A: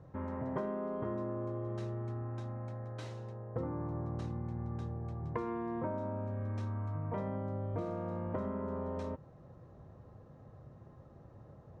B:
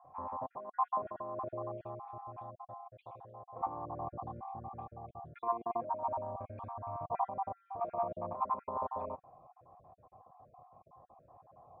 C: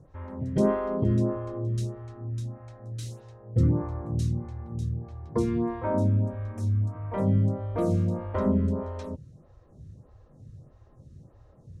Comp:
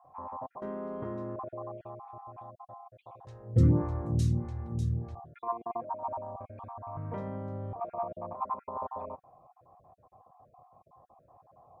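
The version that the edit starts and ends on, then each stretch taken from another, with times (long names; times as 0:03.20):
B
0:00.62–0:01.36: punch in from A
0:03.27–0:05.15: punch in from C
0:06.97–0:07.73: punch in from A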